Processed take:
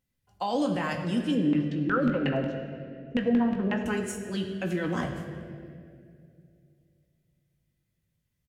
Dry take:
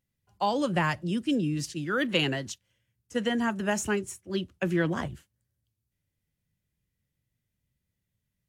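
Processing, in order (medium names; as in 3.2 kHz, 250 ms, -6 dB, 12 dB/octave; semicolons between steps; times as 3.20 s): peak limiter -22 dBFS, peak gain reduction 9 dB; 1.35–3.86 s: LFO low-pass saw down 5.5 Hz 240–2800 Hz; doubling 21 ms -11 dB; speakerphone echo 100 ms, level -18 dB; reverberation RT60 2.4 s, pre-delay 4 ms, DRR 3 dB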